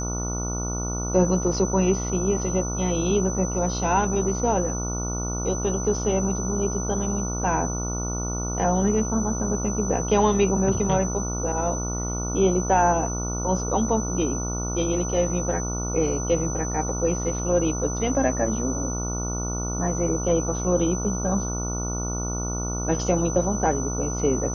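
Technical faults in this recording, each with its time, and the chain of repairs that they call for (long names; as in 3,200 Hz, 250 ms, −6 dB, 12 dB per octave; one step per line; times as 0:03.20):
mains buzz 60 Hz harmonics 24 −29 dBFS
whistle 6,000 Hz −31 dBFS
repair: notch filter 6,000 Hz, Q 30
hum removal 60 Hz, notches 24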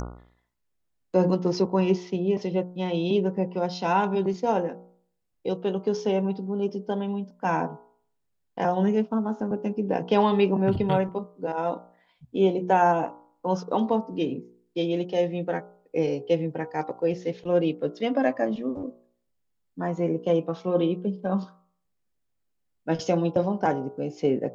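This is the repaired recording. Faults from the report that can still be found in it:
none of them is left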